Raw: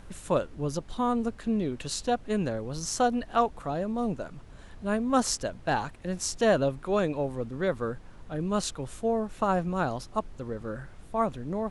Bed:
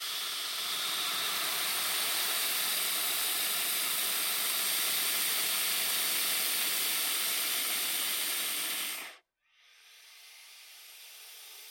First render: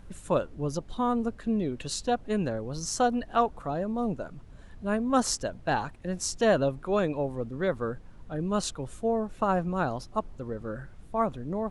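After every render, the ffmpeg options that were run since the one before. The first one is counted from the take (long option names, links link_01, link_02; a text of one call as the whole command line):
ffmpeg -i in.wav -af "afftdn=noise_reduction=6:noise_floor=-48" out.wav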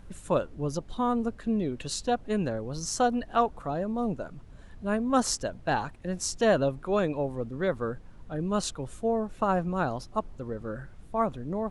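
ffmpeg -i in.wav -af anull out.wav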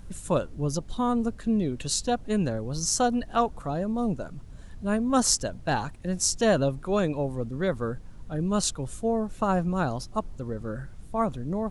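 ffmpeg -i in.wav -af "bass=frequency=250:gain=5,treble=frequency=4000:gain=8" out.wav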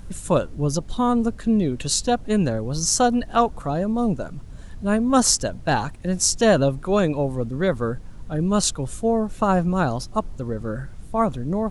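ffmpeg -i in.wav -af "volume=5.5dB,alimiter=limit=-1dB:level=0:latency=1" out.wav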